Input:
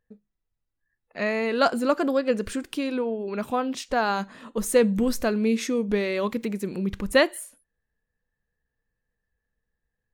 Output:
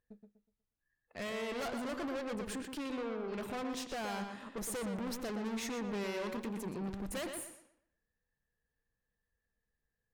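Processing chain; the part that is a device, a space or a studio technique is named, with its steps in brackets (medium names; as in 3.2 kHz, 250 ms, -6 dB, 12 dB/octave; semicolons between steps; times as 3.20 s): rockabilly slapback (valve stage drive 34 dB, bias 0.55; tape echo 120 ms, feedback 33%, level -4 dB, low-pass 3.7 kHz); trim -3.5 dB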